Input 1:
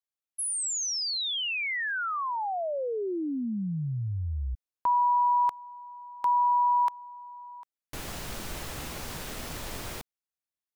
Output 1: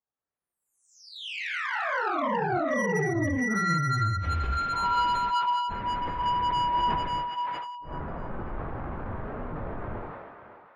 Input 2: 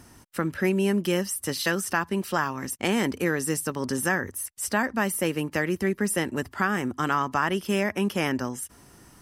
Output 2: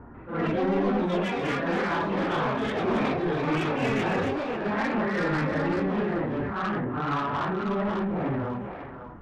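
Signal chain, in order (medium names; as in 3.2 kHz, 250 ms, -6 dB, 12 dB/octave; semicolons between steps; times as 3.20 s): phase randomisation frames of 200 ms; low-pass 1.4 kHz 24 dB/octave; dynamic bell 110 Hz, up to +6 dB, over -45 dBFS, Q 1.5; in parallel at +2 dB: compression, threshold -41 dBFS; on the sum: saturation -23.5 dBFS; on a send: thinning echo 545 ms, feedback 21%, high-pass 870 Hz, level -4.5 dB; on the sum: ever faster or slower copies 144 ms, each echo +6 st, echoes 2; decay stretcher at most 35 dB/s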